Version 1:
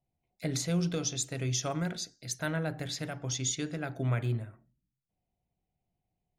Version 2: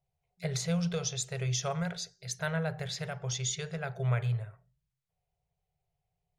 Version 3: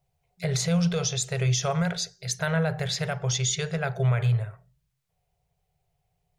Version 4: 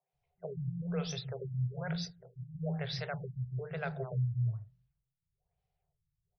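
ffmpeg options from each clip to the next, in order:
-af "afftfilt=real='re*(1-between(b*sr/4096,180,380))':imag='im*(1-between(b*sr/4096,180,380))':win_size=4096:overlap=0.75,highshelf=f=9600:g=-10,volume=1.12"
-af "alimiter=level_in=1.12:limit=0.0631:level=0:latency=1:release=33,volume=0.891,volume=2.66"
-filter_complex "[0:a]acrossover=split=210|5400[s0][s1][s2];[s2]adelay=30[s3];[s0]adelay=130[s4];[s4][s1][s3]amix=inputs=3:normalize=0,afftfilt=real='re*lt(b*sr/1024,220*pow(6200/220,0.5+0.5*sin(2*PI*1.1*pts/sr)))':imag='im*lt(b*sr/1024,220*pow(6200/220,0.5+0.5*sin(2*PI*1.1*pts/sr)))':win_size=1024:overlap=0.75,volume=0.398"

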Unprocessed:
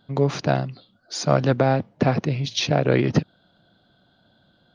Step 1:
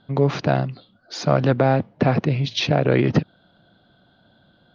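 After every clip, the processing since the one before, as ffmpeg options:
-filter_complex "[0:a]lowpass=3900,asplit=2[s0][s1];[s1]alimiter=limit=0.224:level=0:latency=1:release=61,volume=1.26[s2];[s0][s2]amix=inputs=2:normalize=0,volume=0.668"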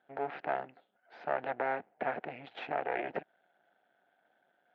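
-af "aeval=exprs='max(val(0),0)':c=same,highpass=460,equalizer=f=740:t=q:w=4:g=8,equalizer=f=1100:t=q:w=4:g=-9,equalizer=f=1600:t=q:w=4:g=4,lowpass=f=2500:w=0.5412,lowpass=f=2500:w=1.3066,volume=0.355"

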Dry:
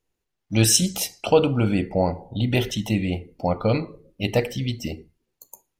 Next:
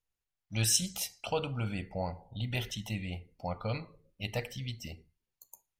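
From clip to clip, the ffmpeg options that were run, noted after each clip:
-af "equalizer=f=330:w=0.93:g=-12,volume=0.355"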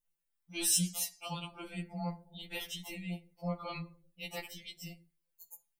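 -af "aexciter=amount=1:drive=9.6:freq=8400,afftfilt=real='re*2.83*eq(mod(b,8),0)':imag='im*2.83*eq(mod(b,8),0)':win_size=2048:overlap=0.75"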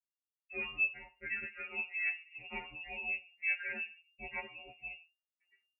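-af "agate=range=0.0224:threshold=0.00178:ratio=3:detection=peak,lowpass=f=2400:t=q:w=0.5098,lowpass=f=2400:t=q:w=0.6013,lowpass=f=2400:t=q:w=0.9,lowpass=f=2400:t=q:w=2.563,afreqshift=-2800,volume=1.26"

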